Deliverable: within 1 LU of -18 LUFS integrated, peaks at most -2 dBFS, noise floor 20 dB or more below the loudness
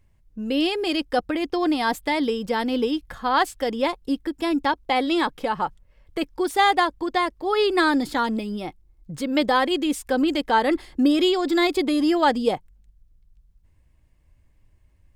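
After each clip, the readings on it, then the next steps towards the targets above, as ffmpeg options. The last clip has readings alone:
loudness -23.0 LUFS; peak level -7.5 dBFS; loudness target -18.0 LUFS
-> -af "volume=1.78"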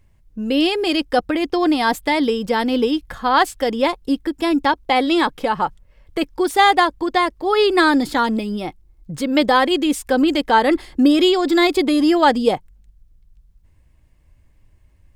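loudness -18.0 LUFS; peak level -2.5 dBFS; noise floor -55 dBFS

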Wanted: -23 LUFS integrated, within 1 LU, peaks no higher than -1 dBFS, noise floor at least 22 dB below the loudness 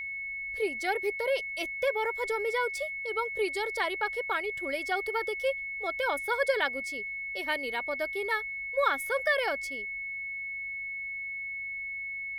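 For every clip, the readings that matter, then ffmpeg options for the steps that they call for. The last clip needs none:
hum 50 Hz; highest harmonic 200 Hz; hum level -65 dBFS; steady tone 2.2 kHz; tone level -34 dBFS; loudness -31.0 LUFS; peak level -13.5 dBFS; loudness target -23.0 LUFS
-> -af "bandreject=f=50:t=h:w=4,bandreject=f=100:t=h:w=4,bandreject=f=150:t=h:w=4,bandreject=f=200:t=h:w=4"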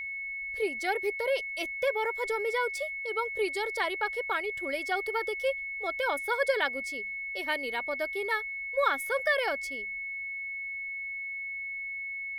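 hum not found; steady tone 2.2 kHz; tone level -34 dBFS
-> -af "bandreject=f=2200:w=30"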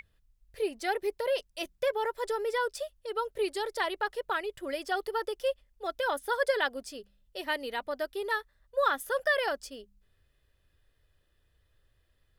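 steady tone not found; loudness -32.0 LUFS; peak level -14.0 dBFS; loudness target -23.0 LUFS
-> -af "volume=2.82"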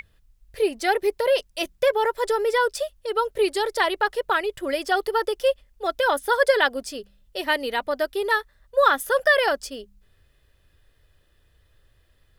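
loudness -23.0 LUFS; peak level -5.0 dBFS; noise floor -62 dBFS

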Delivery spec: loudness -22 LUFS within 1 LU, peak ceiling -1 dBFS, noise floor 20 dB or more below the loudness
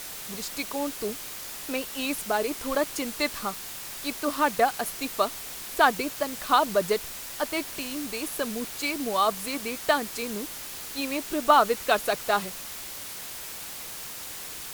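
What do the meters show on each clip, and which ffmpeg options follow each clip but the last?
noise floor -39 dBFS; noise floor target -48 dBFS; loudness -28.0 LUFS; peak level -4.5 dBFS; loudness target -22.0 LUFS
-> -af "afftdn=nr=9:nf=-39"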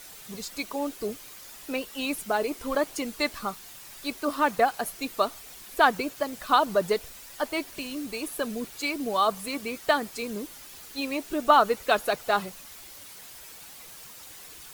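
noise floor -46 dBFS; noise floor target -48 dBFS
-> -af "afftdn=nr=6:nf=-46"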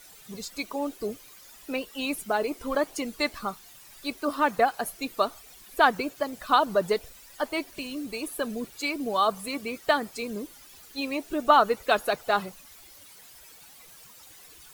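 noise floor -51 dBFS; loudness -28.0 LUFS; peak level -5.0 dBFS; loudness target -22.0 LUFS
-> -af "volume=2,alimiter=limit=0.891:level=0:latency=1"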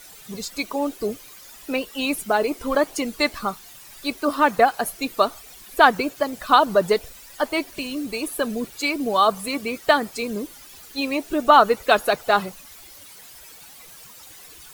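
loudness -22.0 LUFS; peak level -1.0 dBFS; noise floor -45 dBFS

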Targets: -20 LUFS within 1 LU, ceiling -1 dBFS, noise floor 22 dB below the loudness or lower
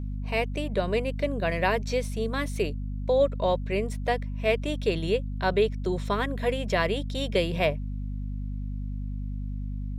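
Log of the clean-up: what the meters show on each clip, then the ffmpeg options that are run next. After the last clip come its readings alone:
hum 50 Hz; highest harmonic 250 Hz; hum level -29 dBFS; loudness -28.5 LUFS; peak level -9.5 dBFS; loudness target -20.0 LUFS
-> -af "bandreject=f=50:t=h:w=4,bandreject=f=100:t=h:w=4,bandreject=f=150:t=h:w=4,bandreject=f=200:t=h:w=4,bandreject=f=250:t=h:w=4"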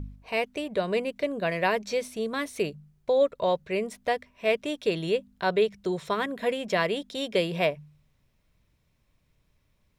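hum not found; loudness -28.0 LUFS; peak level -11.0 dBFS; loudness target -20.0 LUFS
-> -af "volume=2.51"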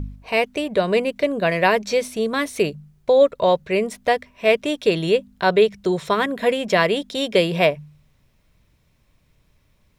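loudness -20.0 LUFS; peak level -3.0 dBFS; noise floor -62 dBFS

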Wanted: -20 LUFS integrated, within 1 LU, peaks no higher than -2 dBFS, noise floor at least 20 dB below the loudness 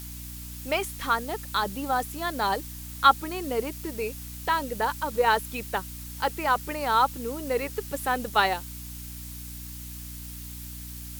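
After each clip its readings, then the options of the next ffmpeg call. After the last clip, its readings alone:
hum 60 Hz; highest harmonic 300 Hz; hum level -39 dBFS; noise floor -39 dBFS; noise floor target -47 dBFS; loudness -27.0 LUFS; peak level -5.5 dBFS; loudness target -20.0 LUFS
-> -af "bandreject=f=60:t=h:w=6,bandreject=f=120:t=h:w=6,bandreject=f=180:t=h:w=6,bandreject=f=240:t=h:w=6,bandreject=f=300:t=h:w=6"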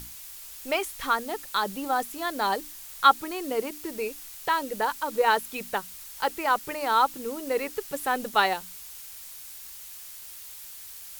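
hum not found; noise floor -43 dBFS; noise floor target -47 dBFS
-> -af "afftdn=nr=6:nf=-43"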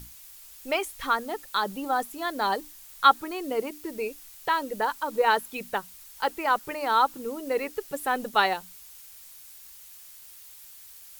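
noise floor -48 dBFS; loudness -27.5 LUFS; peak level -6.0 dBFS; loudness target -20.0 LUFS
-> -af "volume=2.37,alimiter=limit=0.794:level=0:latency=1"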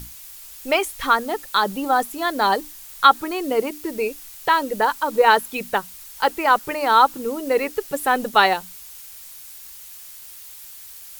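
loudness -20.5 LUFS; peak level -2.0 dBFS; noise floor -41 dBFS

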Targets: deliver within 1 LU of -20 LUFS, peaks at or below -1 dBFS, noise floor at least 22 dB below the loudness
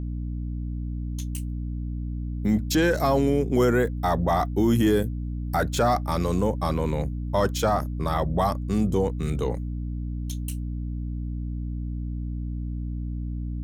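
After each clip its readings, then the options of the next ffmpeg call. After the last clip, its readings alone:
hum 60 Hz; highest harmonic 300 Hz; hum level -27 dBFS; loudness -26.5 LUFS; peak level -10.0 dBFS; loudness target -20.0 LUFS
-> -af "bandreject=f=60:t=h:w=4,bandreject=f=120:t=h:w=4,bandreject=f=180:t=h:w=4,bandreject=f=240:t=h:w=4,bandreject=f=300:t=h:w=4"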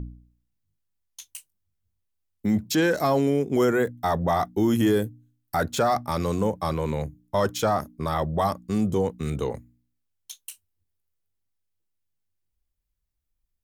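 hum not found; loudness -25.0 LUFS; peak level -11.0 dBFS; loudness target -20.0 LUFS
-> -af "volume=1.78"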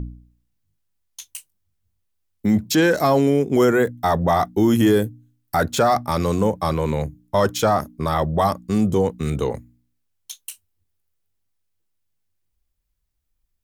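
loudness -20.0 LUFS; peak level -6.0 dBFS; noise floor -73 dBFS

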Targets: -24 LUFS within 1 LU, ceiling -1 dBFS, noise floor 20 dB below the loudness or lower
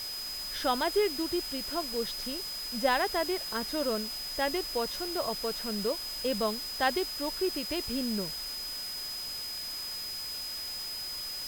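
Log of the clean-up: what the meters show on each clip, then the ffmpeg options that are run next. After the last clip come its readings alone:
steady tone 5 kHz; tone level -36 dBFS; noise floor -38 dBFS; noise floor target -52 dBFS; loudness -31.5 LUFS; peak level -13.5 dBFS; loudness target -24.0 LUFS
-> -af "bandreject=f=5000:w=30"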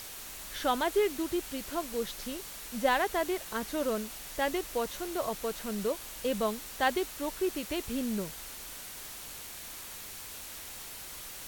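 steady tone not found; noise floor -44 dBFS; noise floor target -54 dBFS
-> -af "afftdn=nr=10:nf=-44"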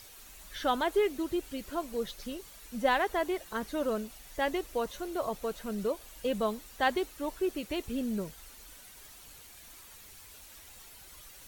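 noise floor -52 dBFS; noise floor target -53 dBFS
-> -af "afftdn=nr=6:nf=-52"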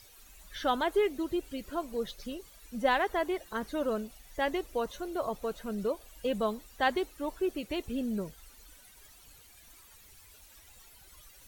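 noise floor -57 dBFS; loudness -33.0 LUFS; peak level -14.5 dBFS; loudness target -24.0 LUFS
-> -af "volume=2.82"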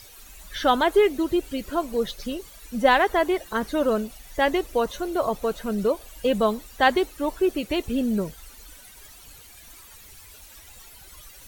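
loudness -24.0 LUFS; peak level -5.5 dBFS; noise floor -48 dBFS

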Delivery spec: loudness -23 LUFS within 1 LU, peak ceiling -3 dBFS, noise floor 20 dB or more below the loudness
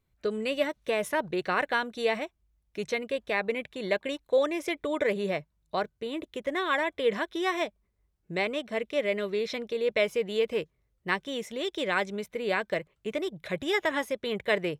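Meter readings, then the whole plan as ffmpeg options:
loudness -30.0 LUFS; peak level -11.5 dBFS; loudness target -23.0 LUFS
-> -af "volume=2.24"

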